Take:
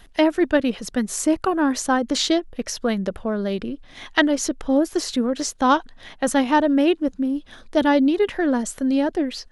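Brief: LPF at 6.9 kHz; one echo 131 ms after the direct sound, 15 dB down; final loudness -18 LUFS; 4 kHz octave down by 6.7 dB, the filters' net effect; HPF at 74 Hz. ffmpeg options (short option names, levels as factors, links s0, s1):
-af "highpass=74,lowpass=6900,equalizer=f=4000:t=o:g=-8.5,aecho=1:1:131:0.178,volume=1.58"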